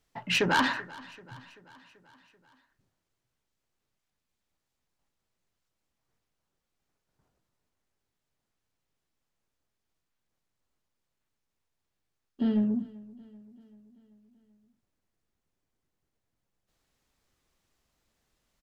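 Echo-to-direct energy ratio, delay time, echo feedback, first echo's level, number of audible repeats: -19.0 dB, 0.386 s, 58%, -21.0 dB, 3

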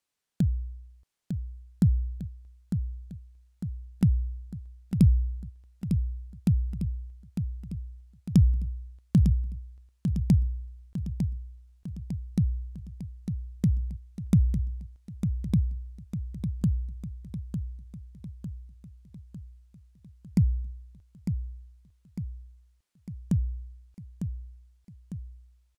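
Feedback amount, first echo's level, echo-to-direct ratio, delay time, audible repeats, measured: 55%, -7.5 dB, -6.0 dB, 0.902 s, 6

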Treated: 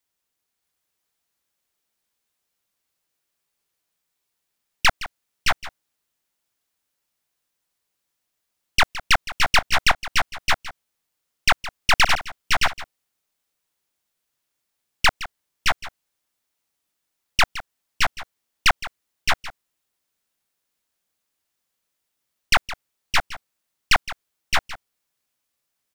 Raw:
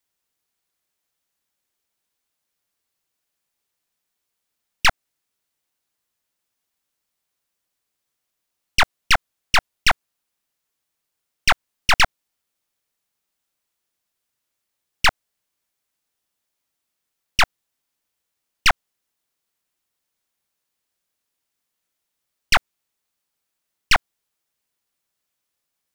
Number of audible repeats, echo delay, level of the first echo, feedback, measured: 3, 0.165 s, -15.5 dB, no steady repeat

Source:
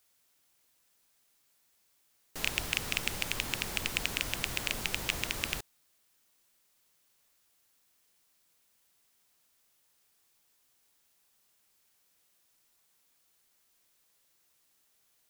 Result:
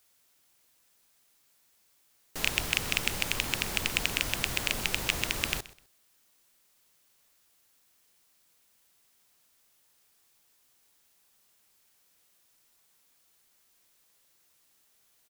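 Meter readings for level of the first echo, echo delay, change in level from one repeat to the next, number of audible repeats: -19.0 dB, 0.127 s, -12.5 dB, 2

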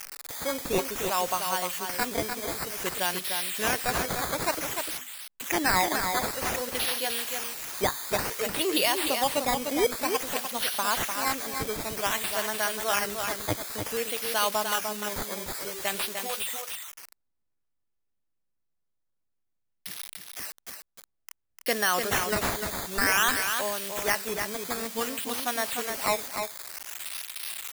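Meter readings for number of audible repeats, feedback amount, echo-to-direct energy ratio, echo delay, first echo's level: 1, no steady repeat, -6.0 dB, 0.3 s, -6.0 dB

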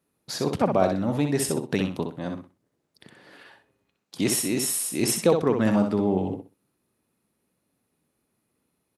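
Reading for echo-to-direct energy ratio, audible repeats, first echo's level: -6.0 dB, 3, -6.0 dB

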